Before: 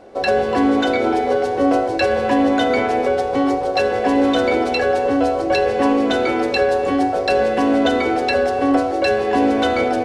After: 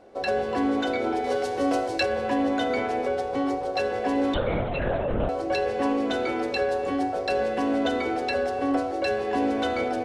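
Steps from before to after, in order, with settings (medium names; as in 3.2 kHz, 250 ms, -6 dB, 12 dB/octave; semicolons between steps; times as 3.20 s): 1.24–2.03 s: treble shelf 2.8 kHz +10 dB; 4.34–5.29 s: LPC vocoder at 8 kHz whisper; trim -8.5 dB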